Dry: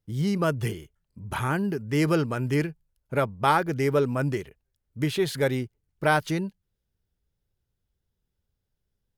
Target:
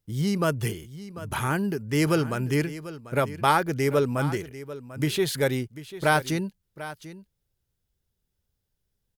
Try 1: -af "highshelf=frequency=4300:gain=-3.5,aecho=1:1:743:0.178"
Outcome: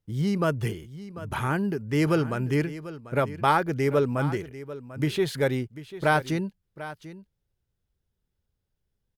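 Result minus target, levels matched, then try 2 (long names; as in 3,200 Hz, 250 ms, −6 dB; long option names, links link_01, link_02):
8,000 Hz band −7.5 dB
-af "highshelf=frequency=4300:gain=6.5,aecho=1:1:743:0.178"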